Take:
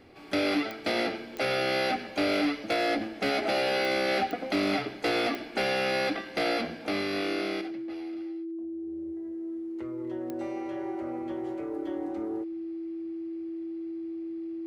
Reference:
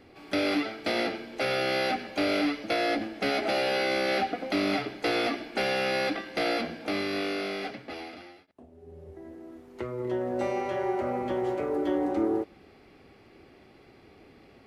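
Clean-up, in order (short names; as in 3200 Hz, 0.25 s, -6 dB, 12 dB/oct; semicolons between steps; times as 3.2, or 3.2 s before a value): clip repair -18.5 dBFS; de-click; notch 330 Hz, Q 30; gain 0 dB, from 7.61 s +9 dB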